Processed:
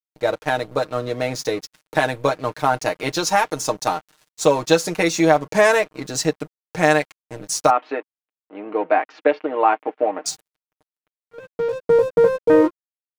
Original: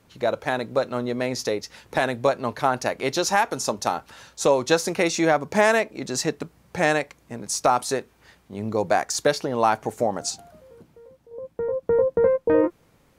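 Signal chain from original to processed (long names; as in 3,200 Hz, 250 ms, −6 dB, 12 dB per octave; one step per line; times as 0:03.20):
dead-zone distortion −40 dBFS
0:07.70–0:10.26: elliptic band-pass filter 270–2,700 Hz, stop band 50 dB
comb filter 6.5 ms, depth 70%
level +2 dB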